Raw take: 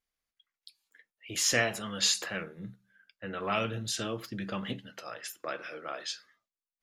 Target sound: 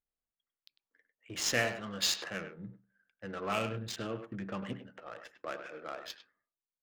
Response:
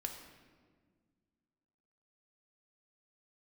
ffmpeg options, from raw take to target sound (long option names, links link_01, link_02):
-filter_complex "[0:a]asettb=1/sr,asplit=3[link_01][link_02][link_03];[link_01]atrim=end=3.964[link_04];[link_02]atrim=start=3.96:end=5.13,asetpts=PTS-STARTPTS,afade=type=in:duration=0.004:curve=qsin,afade=type=out:start_time=1.166:duration=0.004:curve=qsin,asuperstop=centerf=5000:order=4:qfactor=1.2[link_05];[link_03]atrim=start=5.126[link_06];[link_04][link_05]acrossfade=duration=0.004:curve1=hsin:curve2=qsin[link_07];[link_07][link_06]acrossfade=duration=0.004:curve1=qsin:curve2=hsin,adynamicsmooth=sensitivity=7:basefreq=1100,asplit=2[link_08][link_09];[link_09]adelay=100,highpass=300,lowpass=3400,asoftclip=type=hard:threshold=-22dB,volume=-9dB[link_10];[link_08][link_10]amix=inputs=2:normalize=0,volume=-3dB"